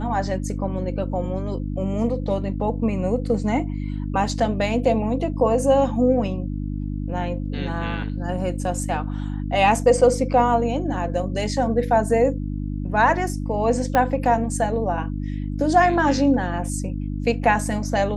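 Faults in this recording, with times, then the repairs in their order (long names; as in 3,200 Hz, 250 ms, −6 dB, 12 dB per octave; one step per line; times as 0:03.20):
mains hum 50 Hz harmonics 6 −27 dBFS
0:13.95: click −7 dBFS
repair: click removal
hum removal 50 Hz, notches 6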